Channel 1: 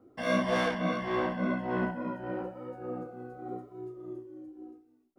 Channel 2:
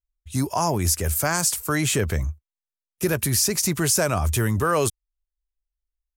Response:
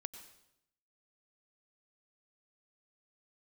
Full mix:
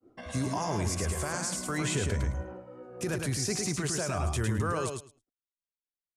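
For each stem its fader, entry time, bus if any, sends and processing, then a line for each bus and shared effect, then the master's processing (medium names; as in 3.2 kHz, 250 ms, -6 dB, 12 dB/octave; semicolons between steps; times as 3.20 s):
-0.5 dB, 0.00 s, no send, echo send -6 dB, peak limiter -28 dBFS, peak gain reduction 11.5 dB; auto duck -12 dB, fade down 0.20 s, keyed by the second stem
-3.5 dB, 0.00 s, no send, echo send -4.5 dB, peak limiter -19 dBFS, peak gain reduction 11 dB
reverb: none
echo: feedback delay 107 ms, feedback 15%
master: expander -56 dBFS; low-pass 9.2 kHz 24 dB/octave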